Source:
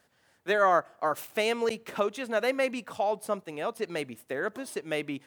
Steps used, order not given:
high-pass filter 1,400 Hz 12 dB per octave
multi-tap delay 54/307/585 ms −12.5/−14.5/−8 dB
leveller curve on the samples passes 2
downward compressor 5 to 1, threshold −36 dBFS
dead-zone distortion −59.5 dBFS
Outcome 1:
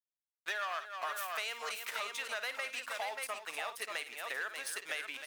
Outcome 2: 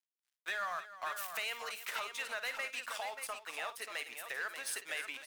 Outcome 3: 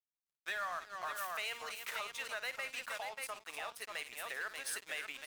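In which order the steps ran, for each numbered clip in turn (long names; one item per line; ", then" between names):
leveller curve on the samples, then high-pass filter, then dead-zone distortion, then multi-tap delay, then downward compressor
downward compressor, then dead-zone distortion, then high-pass filter, then leveller curve on the samples, then multi-tap delay
multi-tap delay, then downward compressor, then high-pass filter, then dead-zone distortion, then leveller curve on the samples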